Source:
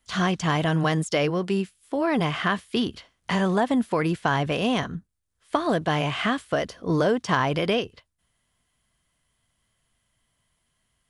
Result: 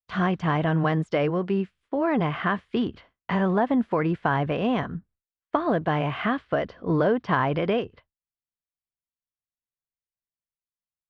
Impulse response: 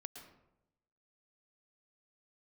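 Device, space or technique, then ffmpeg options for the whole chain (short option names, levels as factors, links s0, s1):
hearing-loss simulation: -filter_complex "[0:a]lowpass=2000,agate=range=0.0224:threshold=0.00316:ratio=3:detection=peak,asettb=1/sr,asplit=3[s0][s1][s2];[s0]atrim=end=6.334[s3];[s1]atrim=start=6.33:end=7.61,asetpts=PTS-STARTPTS,afade=t=in:d=0.004:c=qsin,afade=t=out:st=1.276:d=0.004:c=qsin,highshelf=f=6200:t=q:w=1.5:g=-6.5[s4];[s2]atrim=start=7.606[s5];[s3][s4]acrossfade=d=0.004:c1=hsin:c2=qsin[s6];[s6][s5]acrossfade=d=0.004:c1=qsin:c2=hsin"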